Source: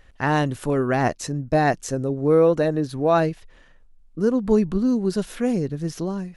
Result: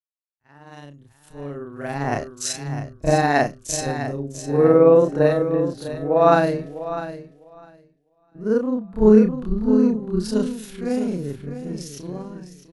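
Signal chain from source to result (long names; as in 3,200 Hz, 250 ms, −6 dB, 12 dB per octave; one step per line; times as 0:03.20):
fade in at the beginning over 1.32 s
noise gate with hold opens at −40 dBFS
time stretch by overlap-add 2×, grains 112 ms
on a send: repeating echo 653 ms, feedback 37%, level −6.5 dB
on the sum: multiband upward and downward expander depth 100%
level −1 dB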